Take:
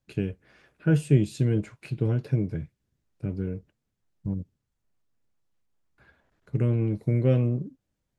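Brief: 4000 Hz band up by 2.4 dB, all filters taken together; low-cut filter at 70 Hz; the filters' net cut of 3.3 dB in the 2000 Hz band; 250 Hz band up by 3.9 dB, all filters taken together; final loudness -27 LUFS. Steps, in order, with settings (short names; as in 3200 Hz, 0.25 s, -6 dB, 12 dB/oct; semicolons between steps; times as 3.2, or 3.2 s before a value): HPF 70 Hz; bell 250 Hz +5.5 dB; bell 2000 Hz -6.5 dB; bell 4000 Hz +5.5 dB; gain -1.5 dB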